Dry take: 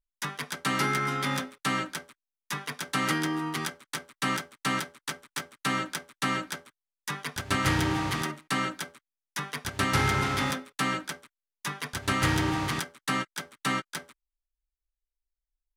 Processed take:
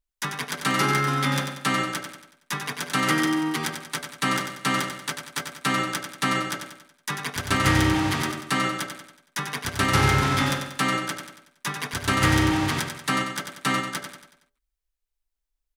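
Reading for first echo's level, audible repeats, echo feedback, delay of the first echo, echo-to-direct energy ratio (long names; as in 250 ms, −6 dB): −7.0 dB, 5, 46%, 93 ms, −6.0 dB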